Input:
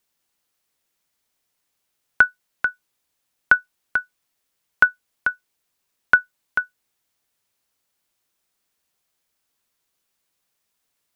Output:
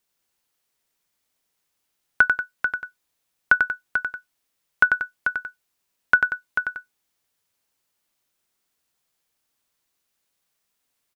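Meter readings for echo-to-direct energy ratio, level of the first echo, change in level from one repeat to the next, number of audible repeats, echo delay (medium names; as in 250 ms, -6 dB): -4.0 dB, -5.0 dB, -7.0 dB, 2, 93 ms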